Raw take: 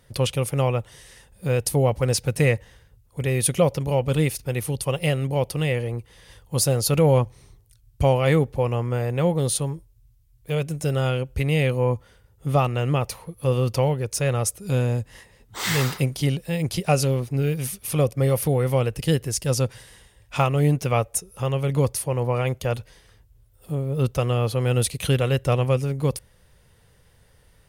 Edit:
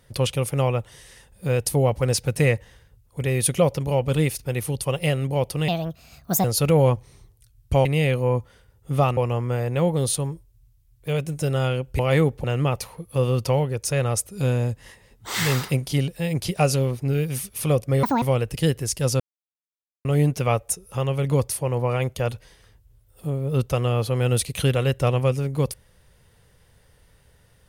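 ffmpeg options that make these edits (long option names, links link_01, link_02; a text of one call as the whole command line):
ffmpeg -i in.wav -filter_complex "[0:a]asplit=11[link_01][link_02][link_03][link_04][link_05][link_06][link_07][link_08][link_09][link_10][link_11];[link_01]atrim=end=5.684[link_12];[link_02]atrim=start=5.68:end=6.73,asetpts=PTS-STARTPTS,asetrate=60858,aresample=44100,atrim=end_sample=33554,asetpts=PTS-STARTPTS[link_13];[link_03]atrim=start=6.726:end=8.142[link_14];[link_04]atrim=start=11.408:end=12.732[link_15];[link_05]atrim=start=8.588:end=11.412[link_16];[link_06]atrim=start=8.138:end=8.592[link_17];[link_07]atrim=start=12.728:end=18.324[link_18];[link_08]atrim=start=18.32:end=18.67,asetpts=PTS-STARTPTS,asetrate=82026,aresample=44100,atrim=end_sample=8298,asetpts=PTS-STARTPTS[link_19];[link_09]atrim=start=18.666:end=19.65,asetpts=PTS-STARTPTS,afade=type=out:start_time=0.98:duration=0.004:curve=hsin[link_20];[link_10]atrim=start=19.65:end=20.5,asetpts=PTS-STARTPTS,volume=0[link_21];[link_11]atrim=start=20.5,asetpts=PTS-STARTPTS,afade=type=in:duration=0.004:curve=hsin[link_22];[link_12][link_13]acrossfade=duration=0.004:curve1=hsin:curve2=hsin[link_23];[link_23][link_14]acrossfade=duration=0.004:curve1=hsin:curve2=hsin[link_24];[link_24][link_15]acrossfade=duration=0.004:curve1=hsin:curve2=hsin[link_25];[link_25][link_16]acrossfade=duration=0.004:curve1=hsin:curve2=hsin[link_26];[link_26][link_17]acrossfade=duration=0.004:curve1=hsin:curve2=hsin[link_27];[link_27][link_18]acrossfade=duration=0.004:curve1=hsin:curve2=hsin[link_28];[link_28][link_19]acrossfade=duration=0.004:curve1=hsin:curve2=hsin[link_29];[link_20][link_21][link_22]concat=n=3:v=0:a=1[link_30];[link_29][link_30]acrossfade=duration=0.004:curve1=hsin:curve2=hsin" out.wav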